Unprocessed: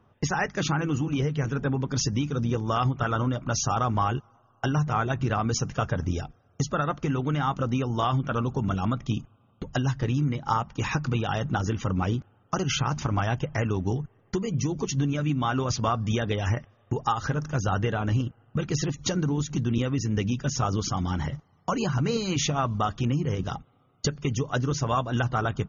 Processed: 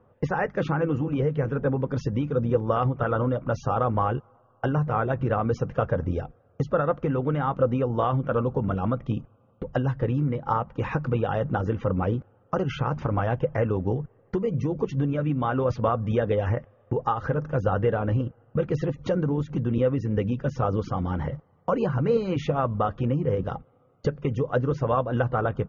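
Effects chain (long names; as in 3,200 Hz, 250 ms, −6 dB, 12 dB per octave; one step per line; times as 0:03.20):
low-pass filter 1,800 Hz 12 dB per octave
parametric band 510 Hz +12 dB 0.36 octaves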